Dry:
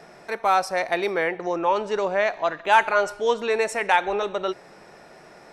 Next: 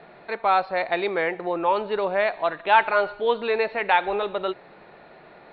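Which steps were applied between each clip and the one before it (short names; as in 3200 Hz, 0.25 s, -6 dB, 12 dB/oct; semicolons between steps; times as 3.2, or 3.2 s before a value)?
Chebyshev low-pass 4400 Hz, order 8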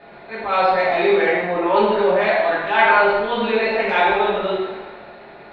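transient shaper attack -9 dB, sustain +5 dB; two-slope reverb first 0.97 s, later 2.6 s, DRR -8 dB; gain -1 dB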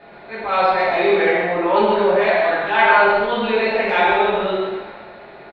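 echo 0.131 s -6.5 dB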